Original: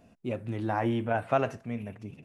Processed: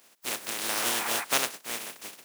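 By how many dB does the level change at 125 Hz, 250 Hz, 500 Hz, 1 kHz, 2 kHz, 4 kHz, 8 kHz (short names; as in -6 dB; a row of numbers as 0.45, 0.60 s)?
-20.0 dB, -11.0 dB, -7.5 dB, -2.5 dB, +6.0 dB, +19.0 dB, n/a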